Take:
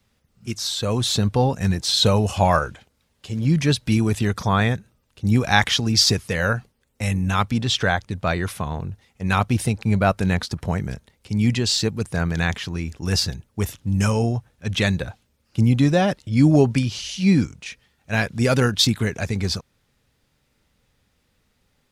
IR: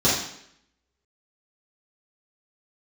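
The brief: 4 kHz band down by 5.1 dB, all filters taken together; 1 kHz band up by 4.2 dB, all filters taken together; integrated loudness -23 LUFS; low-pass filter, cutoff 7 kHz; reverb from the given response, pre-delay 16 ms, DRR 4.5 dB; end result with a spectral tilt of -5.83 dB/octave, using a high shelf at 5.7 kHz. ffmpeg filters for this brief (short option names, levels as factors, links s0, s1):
-filter_complex "[0:a]lowpass=7000,equalizer=f=1000:t=o:g=6,equalizer=f=4000:t=o:g=-8,highshelf=f=5700:g=5,asplit=2[s0][s1];[1:a]atrim=start_sample=2205,adelay=16[s2];[s1][s2]afir=irnorm=-1:irlink=0,volume=0.0841[s3];[s0][s3]amix=inputs=2:normalize=0,volume=0.562"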